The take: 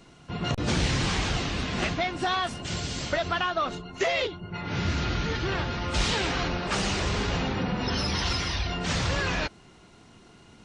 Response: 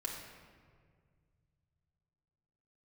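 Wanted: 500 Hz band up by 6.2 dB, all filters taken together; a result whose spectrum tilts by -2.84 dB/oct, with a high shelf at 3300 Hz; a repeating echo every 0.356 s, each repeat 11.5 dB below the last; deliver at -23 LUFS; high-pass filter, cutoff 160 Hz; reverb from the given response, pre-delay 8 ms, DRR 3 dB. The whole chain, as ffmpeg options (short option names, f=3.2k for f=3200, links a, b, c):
-filter_complex "[0:a]highpass=160,equalizer=f=500:t=o:g=8,highshelf=f=3.3k:g=9,aecho=1:1:356|712|1068:0.266|0.0718|0.0194,asplit=2[a][b];[1:a]atrim=start_sample=2205,adelay=8[c];[b][c]afir=irnorm=-1:irlink=0,volume=-4dB[d];[a][d]amix=inputs=2:normalize=0,volume=-0.5dB"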